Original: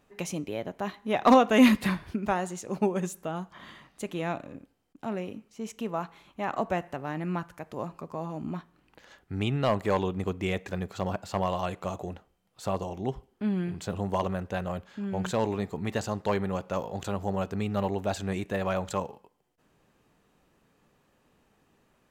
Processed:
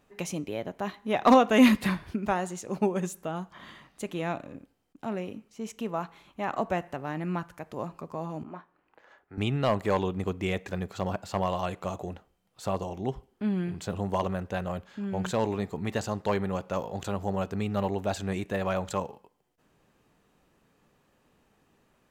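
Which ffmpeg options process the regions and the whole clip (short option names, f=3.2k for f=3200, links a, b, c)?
-filter_complex "[0:a]asettb=1/sr,asplit=3[a][b][c];[a]atrim=end=8.434[d];[b]atrim=start=8.43:end=9.38,asetpts=PTS-STARTPTS,afade=t=in:d=0.004:c=qsin,afade=t=out:st=0.946:d=0.004:c=qsin,acrossover=split=370 2100:gain=0.178 1 0.158[e][f][g];[e][f][g]amix=inputs=3:normalize=0,asplit=2[h][i];[i]adelay=28,volume=-13dB[j];[h][j]amix=inputs=2:normalize=0,atrim=end_sample=41895[k];[c]atrim=start=9.376[l];[d][k]acrossfade=d=0.004:c1=hsin:c2=qsin[m];[m][l]acrossfade=d=0.004:c1=qsin:c2=hsin"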